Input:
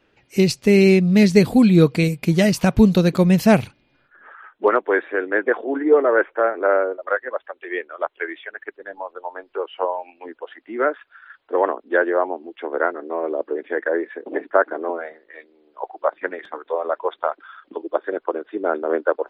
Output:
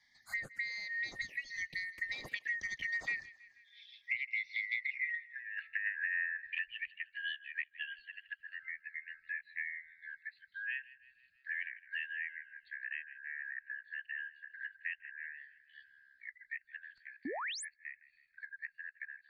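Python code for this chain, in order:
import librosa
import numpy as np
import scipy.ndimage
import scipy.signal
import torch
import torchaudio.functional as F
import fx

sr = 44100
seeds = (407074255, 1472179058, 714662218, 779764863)

y = fx.band_shuffle(x, sr, order='4123')
y = fx.doppler_pass(y, sr, speed_mps=39, closest_m=6.0, pass_at_s=5.27)
y = fx.env_phaser(y, sr, low_hz=460.0, high_hz=3200.0, full_db=-35.5)
y = fx.high_shelf(y, sr, hz=2200.0, db=-7.0)
y = fx.env_lowpass_down(y, sr, base_hz=2100.0, full_db=-39.0)
y = fx.over_compress(y, sr, threshold_db=-41.0, ratio=-0.5)
y = fx.echo_thinned(y, sr, ms=160, feedback_pct=41, hz=830.0, wet_db=-20.5)
y = fx.spec_paint(y, sr, seeds[0], shape='rise', start_s=17.25, length_s=0.4, low_hz=240.0, high_hz=11000.0, level_db=-47.0)
y = fx.band_squash(y, sr, depth_pct=70)
y = y * librosa.db_to_amplitude(6.5)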